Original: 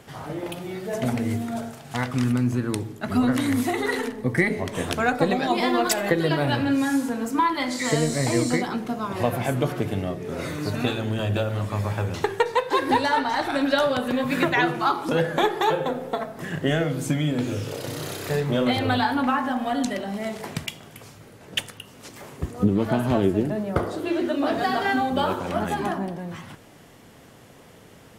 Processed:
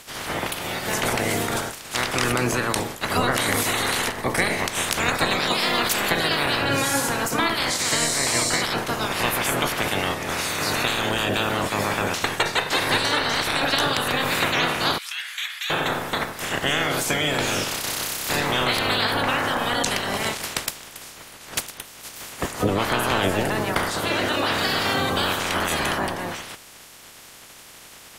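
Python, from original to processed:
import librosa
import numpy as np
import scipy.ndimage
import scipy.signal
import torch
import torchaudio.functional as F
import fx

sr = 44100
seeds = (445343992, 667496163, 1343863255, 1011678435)

p1 = fx.spec_clip(x, sr, under_db=25)
p2 = fx.over_compress(p1, sr, threshold_db=-28.0, ratio=-1.0)
p3 = p1 + (p2 * librosa.db_to_amplitude(-3.0))
p4 = fx.ladder_highpass(p3, sr, hz=1700.0, resonance_pct=30, at=(14.98, 15.7))
y = p4 * librosa.db_to_amplitude(-2.0)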